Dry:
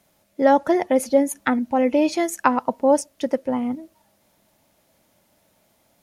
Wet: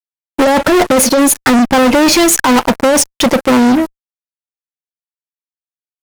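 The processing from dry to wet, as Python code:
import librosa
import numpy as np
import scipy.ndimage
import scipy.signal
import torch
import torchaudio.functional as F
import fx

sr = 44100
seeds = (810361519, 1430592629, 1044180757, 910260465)

y = fx.over_compress(x, sr, threshold_db=-19.0, ratio=-0.5)
y = fx.fuzz(y, sr, gain_db=34.0, gate_db=-42.0)
y = F.gain(torch.from_numpy(y), 6.0).numpy()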